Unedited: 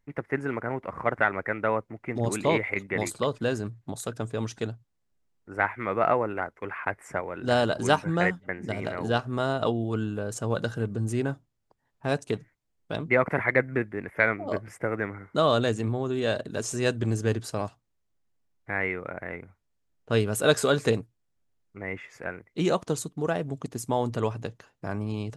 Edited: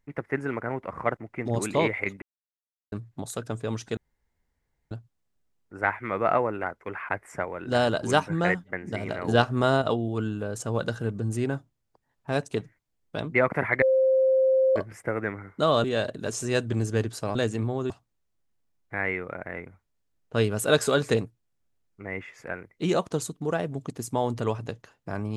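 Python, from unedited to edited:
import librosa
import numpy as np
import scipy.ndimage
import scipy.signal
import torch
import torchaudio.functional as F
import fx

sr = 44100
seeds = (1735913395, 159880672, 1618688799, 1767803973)

y = fx.edit(x, sr, fx.cut(start_s=1.17, length_s=0.7),
    fx.silence(start_s=2.92, length_s=0.7),
    fx.insert_room_tone(at_s=4.67, length_s=0.94),
    fx.clip_gain(start_s=9.04, length_s=0.54, db=5.0),
    fx.bleep(start_s=13.58, length_s=0.94, hz=526.0, db=-17.5),
    fx.move(start_s=15.6, length_s=0.55, to_s=17.66), tone=tone)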